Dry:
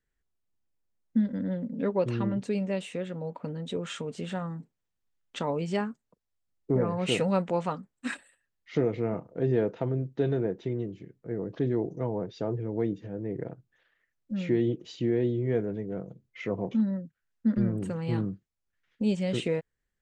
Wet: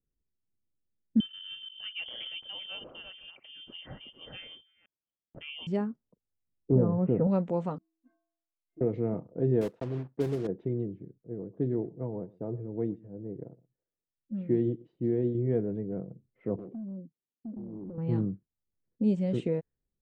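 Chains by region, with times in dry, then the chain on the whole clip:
0:01.20–0:05.67: delay that plays each chunk backwards 244 ms, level −6.5 dB + high-frequency loss of the air 95 metres + voice inversion scrambler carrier 3,300 Hz
0:06.72–0:07.27: inverse Chebyshev low-pass filter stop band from 6,200 Hz, stop band 70 dB + low-shelf EQ 250 Hz +5.5 dB
0:07.78–0:08.81: transient designer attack +3 dB, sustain −6 dB + stiff-string resonator 320 Hz, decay 0.84 s, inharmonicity 0.03
0:09.61–0:10.49: one scale factor per block 3 bits + low-shelf EQ 320 Hz −3 dB + expander for the loud parts, over −44 dBFS
0:11.18–0:15.35: single-tap delay 118 ms −18 dB + expander for the loud parts, over −41 dBFS
0:16.56–0:17.98: downward compressor 12 to 1, threshold −30 dBFS + resonant band-pass 340 Hz, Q 1.4 + hard clipping −36.5 dBFS
whole clip: low-shelf EQ 86 Hz −6.5 dB; low-pass that shuts in the quiet parts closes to 490 Hz, open at −25 dBFS; tilt shelving filter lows +9 dB, about 860 Hz; level −6 dB

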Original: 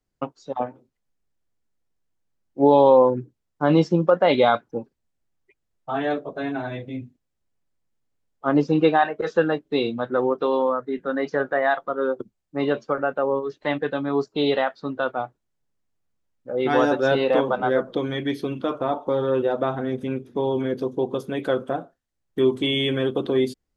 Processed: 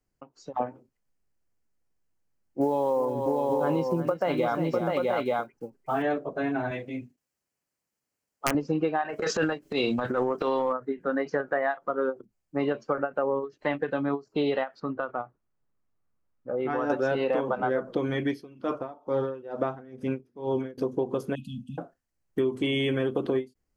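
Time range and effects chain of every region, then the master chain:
0:02.61–0:06.03: one scale factor per block 7 bits + multi-tap delay 354/650/882 ms −12.5/−7.5/−7.5 dB
0:06.71–0:08.55: high-pass filter 260 Hz 6 dB per octave + high-shelf EQ 2,200 Hz +6 dB + wrap-around overflow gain 10.5 dB
0:09.09–0:10.73: high-shelf EQ 2,200 Hz +12 dB + transient designer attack −11 dB, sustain +9 dB
0:14.80–0:16.90: low-pass filter 2,000 Hz 6 dB per octave + parametric band 1,200 Hz +6.5 dB 0.35 octaves + downward compressor 3 to 1, threshold −26 dBFS
0:18.28–0:20.78: parametric band 5,100 Hz +7 dB 0.37 octaves + tremolo with a sine in dB 2.2 Hz, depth 22 dB
0:21.35–0:21.78: linear-phase brick-wall band-stop 260–2,500 Hz + high-shelf EQ 3,800 Hz −7 dB
whole clip: parametric band 3,600 Hz −11.5 dB 0.26 octaves; downward compressor 10 to 1, threshold −22 dBFS; every ending faded ahead of time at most 320 dB per second

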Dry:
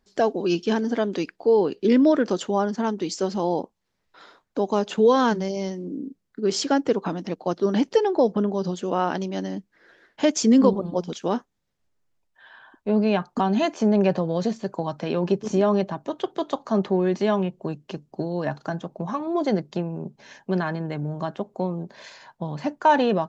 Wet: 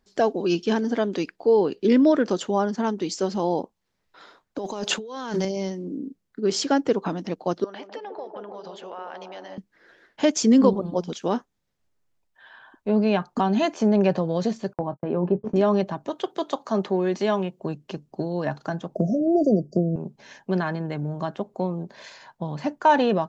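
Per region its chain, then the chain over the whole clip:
0:04.58–0:05.45: high-pass filter 200 Hz 6 dB per octave + high-shelf EQ 3,700 Hz +7 dB + compressor whose output falls as the input rises −30 dBFS
0:07.64–0:09.58: three-way crossover with the lows and the highs turned down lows −21 dB, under 540 Hz, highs −17 dB, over 4,200 Hz + downward compressor 3 to 1, threshold −36 dBFS + delay with a band-pass on its return 151 ms, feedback 57%, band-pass 440 Hz, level −4 dB
0:14.73–0:15.56: low-pass filter 1,100 Hz + noise gate −34 dBFS, range −44 dB + double-tracking delay 22 ms −13.5 dB
0:16.09–0:17.60: high-pass filter 210 Hz 6 dB per octave + high-shelf EQ 5,400 Hz +4.5 dB
0:18.95–0:19.96: linear-phase brick-wall band-stop 730–4,600 Hz + tilt shelving filter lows +4.5 dB, about 1,500 Hz + multiband upward and downward compressor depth 70%
whole clip: no processing

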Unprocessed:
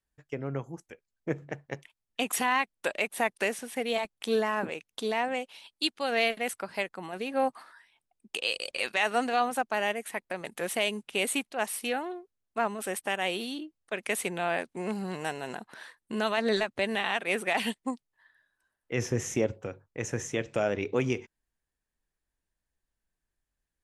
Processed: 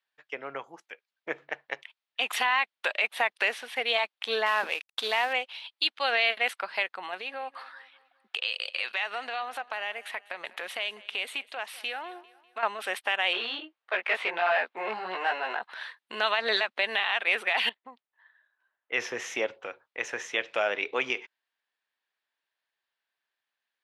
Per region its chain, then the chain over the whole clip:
0:04.46–0:05.33: variable-slope delta modulation 64 kbit/s + high-shelf EQ 6,400 Hz +9.5 dB
0:07.14–0:12.63: downward compressor 3 to 1, threshold −36 dBFS + repeating echo 198 ms, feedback 49%, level −20 dB
0:13.33–0:15.63: chorus effect 1.6 Hz, delay 16 ms, depth 2.8 ms + mid-hump overdrive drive 19 dB, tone 1,200 Hz, clips at −17 dBFS + high-shelf EQ 6,200 Hz −9 dB
0:17.69–0:18.93: downward compressor, threshold −36 dBFS + head-to-tape spacing loss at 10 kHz 30 dB
whole clip: high-pass filter 810 Hz 12 dB per octave; high shelf with overshoot 5,300 Hz −13 dB, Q 1.5; brickwall limiter −20 dBFS; level +6.5 dB

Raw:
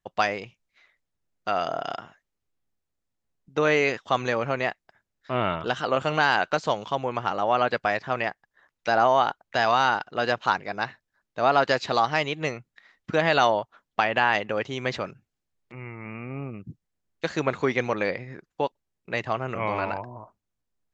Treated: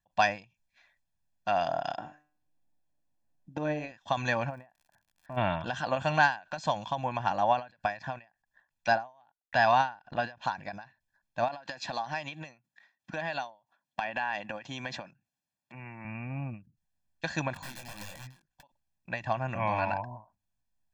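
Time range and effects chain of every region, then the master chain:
0:01.96–0:03.92: parametric band 390 Hz +14 dB 1.9 octaves + compressor whose output falls as the input rises −14 dBFS, ratio −0.5 + tuned comb filter 150 Hz, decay 0.43 s, mix 70%
0:04.49–0:05.36: low-pass filter 1,300 Hz + downward compressor 2 to 1, threshold −40 dBFS + surface crackle 100 per second −48 dBFS
0:09.21–0:10.42: noise gate −53 dBFS, range −55 dB + upward compression, threshold −28 dBFS + high-frequency loss of the air 85 metres
0:11.48–0:16.05: high-pass filter 170 Hz + downward compressor 4 to 1, threshold −28 dBFS
0:17.54–0:18.63: downward compressor 4 to 1, threshold −32 dBFS + wrap-around overflow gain 30 dB + micro pitch shift up and down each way 36 cents
whole clip: comb filter 1.2 ms, depth 94%; every ending faded ahead of time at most 190 dB per second; level −4.5 dB

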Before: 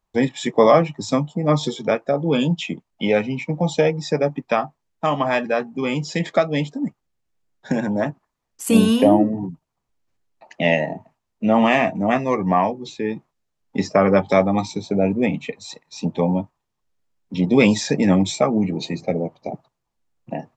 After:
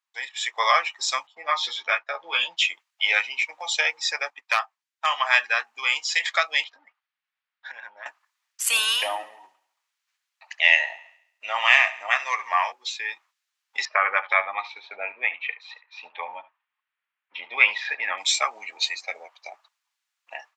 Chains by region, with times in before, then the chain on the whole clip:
0:01.27–0:02.57: noise gate −38 dBFS, range −12 dB + high-frequency loss of the air 170 metres + double-tracking delay 12 ms −3 dB
0:04.30–0:05.10: hard clipping −9 dBFS + expander for the loud parts, over −35 dBFS
0:06.64–0:08.06: high-frequency loss of the air 290 metres + downward compressor 12 to 1, threshold −28 dBFS
0:08.99–0:12.72: low-shelf EQ 220 Hz −6.5 dB + feedback echo with a high-pass in the loop 69 ms, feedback 52%, high-pass 200 Hz, level −17 dB
0:13.85–0:18.18: low-pass filter 2,700 Hz 24 dB per octave + single-tap delay 72 ms −18 dB
whole clip: Bessel high-pass filter 1,900 Hz, order 4; high-shelf EQ 5,000 Hz −8.5 dB; automatic gain control gain up to 10 dB; level +1.5 dB

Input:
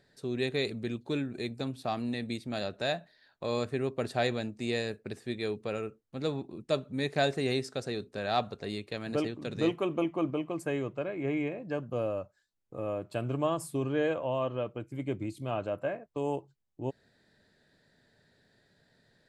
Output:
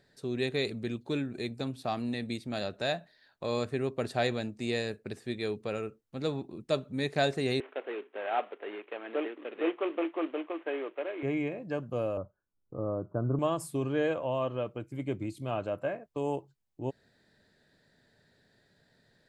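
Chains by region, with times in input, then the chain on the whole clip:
0:07.60–0:11.23: variable-slope delta modulation 16 kbit/s + Butterworth high-pass 310 Hz
0:12.17–0:13.39: Chebyshev low-pass with heavy ripple 1,500 Hz, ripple 3 dB + low-shelf EQ 260 Hz +8.5 dB
whole clip: no processing

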